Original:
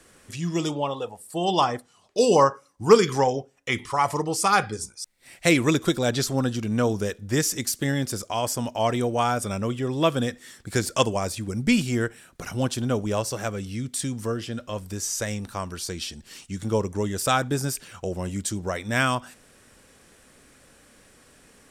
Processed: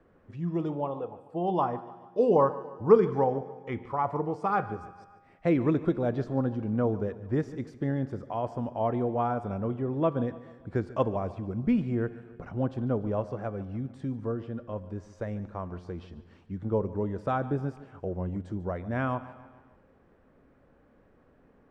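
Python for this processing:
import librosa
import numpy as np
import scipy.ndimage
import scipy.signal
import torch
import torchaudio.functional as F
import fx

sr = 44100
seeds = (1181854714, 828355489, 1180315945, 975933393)

p1 = scipy.signal.sosfilt(scipy.signal.butter(2, 1000.0, 'lowpass', fs=sr, output='sos'), x)
p2 = fx.comb_fb(p1, sr, f0_hz=89.0, decay_s=1.6, harmonics='all', damping=0.0, mix_pct=50)
p3 = p2 + fx.echo_feedback(p2, sr, ms=145, feedback_pct=52, wet_db=-17.5, dry=0)
y = p3 * librosa.db_to_amplitude(2.0)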